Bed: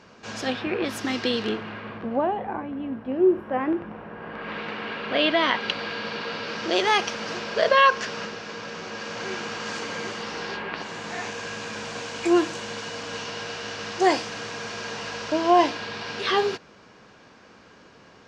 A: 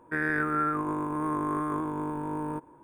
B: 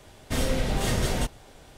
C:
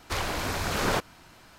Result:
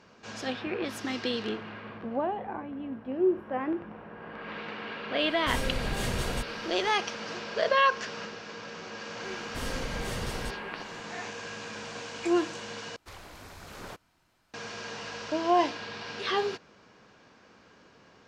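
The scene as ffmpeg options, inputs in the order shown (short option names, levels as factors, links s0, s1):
-filter_complex "[2:a]asplit=2[s0][s1];[0:a]volume=0.501[s2];[s1]asoftclip=type=hard:threshold=0.178[s3];[s2]asplit=2[s4][s5];[s4]atrim=end=12.964[s6];[3:a]atrim=end=1.58,asetpts=PTS-STARTPTS,volume=0.141[s7];[s5]atrim=start=14.536[s8];[s0]atrim=end=1.77,asetpts=PTS-STARTPTS,volume=0.501,afade=t=in:d=0.05,afade=t=out:st=1.72:d=0.05,adelay=5160[s9];[s3]atrim=end=1.77,asetpts=PTS-STARTPTS,volume=0.316,afade=t=in:d=0.004:c=hsin,afade=t=out:st=1.766:d=0.004:c=hsin,adelay=9240[s10];[s6][s7]acrossfade=d=0.004:c1=hsin:c2=hsin[s11];[s11][s8]acrossfade=d=0.004:c1=hsin:c2=hsin[s12];[s12][s9][s10]amix=inputs=3:normalize=0"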